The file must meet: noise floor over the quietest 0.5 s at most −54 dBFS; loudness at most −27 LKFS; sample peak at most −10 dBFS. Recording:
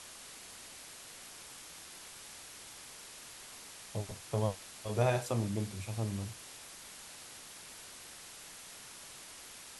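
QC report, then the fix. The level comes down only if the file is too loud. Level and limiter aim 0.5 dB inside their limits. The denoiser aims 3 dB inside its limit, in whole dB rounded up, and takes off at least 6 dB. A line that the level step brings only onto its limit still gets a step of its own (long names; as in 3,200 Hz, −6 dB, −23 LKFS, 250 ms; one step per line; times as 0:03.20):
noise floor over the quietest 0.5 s −51 dBFS: out of spec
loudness −40.5 LKFS: in spec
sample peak −17.5 dBFS: in spec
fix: broadband denoise 6 dB, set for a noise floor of −51 dBFS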